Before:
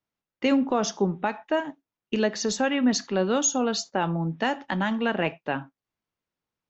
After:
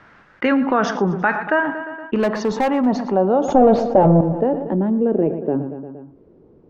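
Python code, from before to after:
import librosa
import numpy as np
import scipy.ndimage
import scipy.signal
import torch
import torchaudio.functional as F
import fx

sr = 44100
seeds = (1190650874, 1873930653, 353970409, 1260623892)

p1 = fx.peak_eq(x, sr, hz=5800.0, db=9.0, octaves=1.5)
p2 = fx.leveller(p1, sr, passes=5, at=(3.48, 4.21))
p3 = fx.filter_sweep_lowpass(p2, sr, from_hz=1600.0, to_hz=400.0, start_s=1.4, end_s=4.92, q=3.3)
p4 = fx.clip_hard(p3, sr, threshold_db=-17.5, at=(2.17, 2.86))
p5 = p4 + fx.echo_feedback(p4, sr, ms=117, feedback_pct=50, wet_db=-18.0, dry=0)
p6 = fx.env_flatten(p5, sr, amount_pct=50)
y = F.gain(torch.from_numpy(p6), -2.0).numpy()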